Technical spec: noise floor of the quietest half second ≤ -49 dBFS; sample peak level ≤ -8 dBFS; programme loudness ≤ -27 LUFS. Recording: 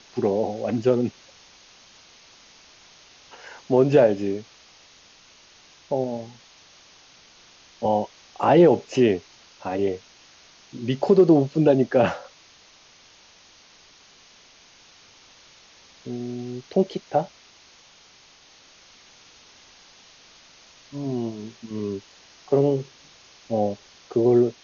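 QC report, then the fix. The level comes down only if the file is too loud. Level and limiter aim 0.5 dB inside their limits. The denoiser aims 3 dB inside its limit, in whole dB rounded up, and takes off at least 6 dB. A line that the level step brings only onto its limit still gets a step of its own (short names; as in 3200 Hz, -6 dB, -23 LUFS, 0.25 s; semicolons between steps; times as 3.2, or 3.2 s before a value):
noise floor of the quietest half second -53 dBFS: OK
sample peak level -5.5 dBFS: fail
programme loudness -22.5 LUFS: fail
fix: gain -5 dB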